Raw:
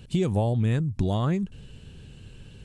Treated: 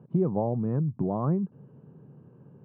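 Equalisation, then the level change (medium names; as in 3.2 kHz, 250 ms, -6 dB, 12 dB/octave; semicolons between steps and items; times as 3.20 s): elliptic band-pass 140–1100 Hz, stop band 70 dB; 0.0 dB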